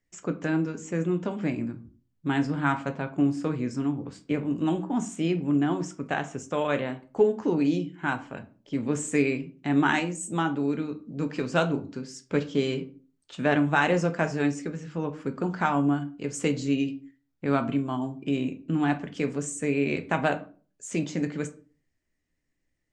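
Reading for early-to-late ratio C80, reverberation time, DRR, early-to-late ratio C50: 20.5 dB, 0.40 s, 7.0 dB, 15.5 dB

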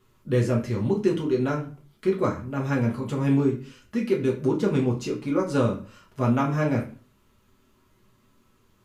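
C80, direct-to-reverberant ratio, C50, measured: 15.5 dB, -3.0 dB, 10.5 dB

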